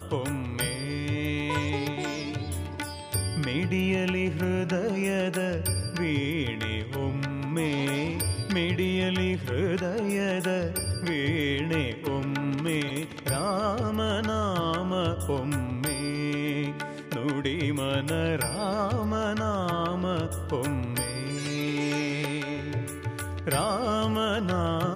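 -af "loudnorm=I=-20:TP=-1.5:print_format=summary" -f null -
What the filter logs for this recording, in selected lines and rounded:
Input Integrated:    -28.5 LUFS
Input True Peak:     -13.6 dBTP
Input LRA:             1.7 LU
Input Threshold:     -38.5 LUFS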